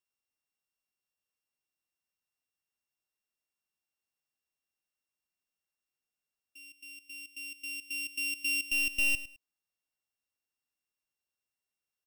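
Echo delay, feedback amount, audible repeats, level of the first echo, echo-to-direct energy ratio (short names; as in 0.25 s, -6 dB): 0.105 s, 21%, 2, -14.5 dB, -14.5 dB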